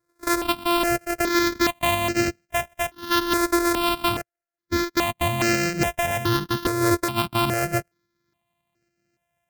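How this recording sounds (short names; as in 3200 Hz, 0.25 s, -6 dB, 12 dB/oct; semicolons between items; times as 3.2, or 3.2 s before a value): a buzz of ramps at a fixed pitch in blocks of 128 samples; tremolo saw up 3.6 Hz, depth 35%; notches that jump at a steady rate 2.4 Hz 790–3500 Hz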